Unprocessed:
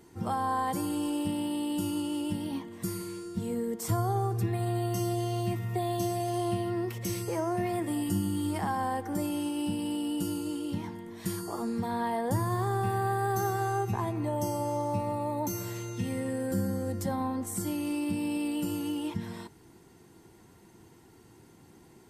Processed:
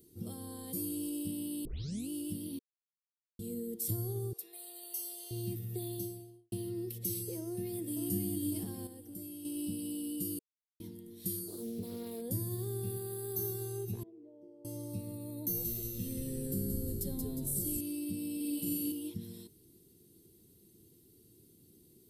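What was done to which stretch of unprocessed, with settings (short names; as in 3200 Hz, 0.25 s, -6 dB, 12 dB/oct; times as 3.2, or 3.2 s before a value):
1.65 tape start 0.44 s
2.59–3.39 mute
4.33–5.31 HPF 590 Hz 24 dB/oct
5.82–6.52 studio fade out
7.41–8.08 echo throw 0.55 s, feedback 40%, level -3.5 dB
8.87–9.45 gain -7.5 dB
10.39–10.8 mute
11.48–12.22 Doppler distortion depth 0.67 ms
12.97–13.39 low shelf 110 Hz -11 dB
14.03–14.65 ladder band-pass 500 Hz, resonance 50%
15.31–17.81 frequency-shifting echo 0.179 s, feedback 53%, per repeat -120 Hz, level -4 dB
18.36–18.92 flutter echo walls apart 7.7 m, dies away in 1.2 s
whole clip: EQ curve 440 Hz 0 dB, 840 Hz -23 dB, 1800 Hz -18 dB, 3900 Hz +3 dB, 6900 Hz -2 dB, 11000 Hz +14 dB; gain -7 dB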